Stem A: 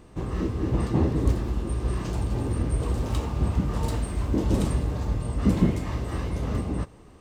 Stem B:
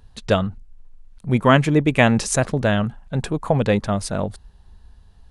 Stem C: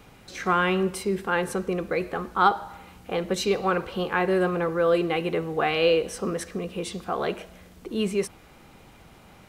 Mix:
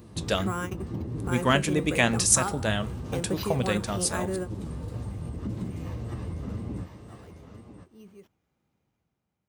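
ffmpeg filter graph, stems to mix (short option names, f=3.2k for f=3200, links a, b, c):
-filter_complex "[0:a]acompressor=threshold=-34dB:ratio=2,flanger=delay=8.4:depth=4.2:regen=45:speed=1.8:shape=sinusoidal,volume=1dB,asplit=2[a][b];[b]volume=-9dB[c];[1:a]flanger=delay=7.5:depth=3.5:regen=74:speed=1.4:shape=triangular,crystalizer=i=4.5:c=0,volume=-5.5dB,asplit=2[d][e];[2:a]dynaudnorm=f=100:g=11:m=7dB,acrusher=samples=5:mix=1:aa=0.000001,volume=-6.5dB[f];[e]apad=whole_len=418073[g];[f][g]sidechaingate=range=-30dB:threshold=-47dB:ratio=16:detection=peak[h];[a][h]amix=inputs=2:normalize=0,lowshelf=f=270:g=11,acompressor=threshold=-28dB:ratio=6,volume=0dB[i];[c]aecho=0:1:998:1[j];[d][i][j]amix=inputs=3:normalize=0,highpass=83"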